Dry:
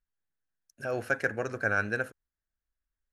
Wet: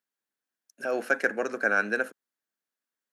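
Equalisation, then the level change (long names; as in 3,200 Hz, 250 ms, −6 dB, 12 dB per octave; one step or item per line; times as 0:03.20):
Butterworth high-pass 200 Hz 36 dB per octave
+3.5 dB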